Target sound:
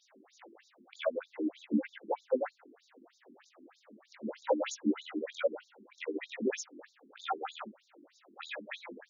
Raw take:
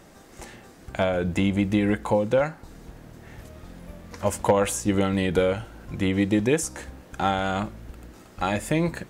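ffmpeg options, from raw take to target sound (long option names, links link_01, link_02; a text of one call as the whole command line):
ffmpeg -i in.wav -af "afftfilt=real='re':imag='-im':win_size=2048:overlap=0.75,afftfilt=real='re*between(b*sr/1024,270*pow(5200/270,0.5+0.5*sin(2*PI*3.2*pts/sr))/1.41,270*pow(5200/270,0.5+0.5*sin(2*PI*3.2*pts/sr))*1.41)':imag='im*between(b*sr/1024,270*pow(5200/270,0.5+0.5*sin(2*PI*3.2*pts/sr))/1.41,270*pow(5200/270,0.5+0.5*sin(2*PI*3.2*pts/sr))*1.41)':win_size=1024:overlap=0.75" out.wav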